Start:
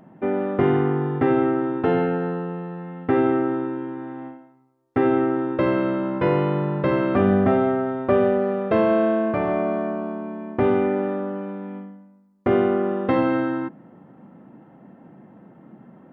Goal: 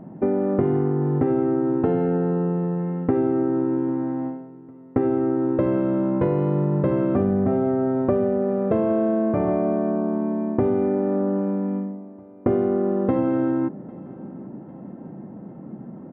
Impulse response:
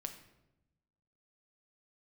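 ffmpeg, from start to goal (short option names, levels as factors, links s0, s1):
-af "tiltshelf=f=1200:g=10,acompressor=threshold=0.126:ratio=6,aecho=1:1:800|1600|2400|3200:0.0708|0.0382|0.0206|0.0111"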